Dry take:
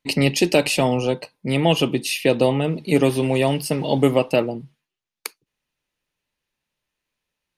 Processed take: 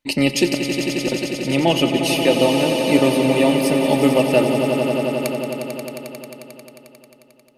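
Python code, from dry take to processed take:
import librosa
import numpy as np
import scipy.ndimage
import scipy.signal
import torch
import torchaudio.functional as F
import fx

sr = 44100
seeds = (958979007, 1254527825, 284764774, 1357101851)

y = fx.gate_flip(x, sr, shuts_db=-11.0, range_db=-25, at=(0.52, 1.12))
y = y + 0.43 * np.pad(y, (int(3.4 * sr / 1000.0), 0))[:len(y)]
y = fx.echo_swell(y, sr, ms=89, loudest=5, wet_db=-9.5)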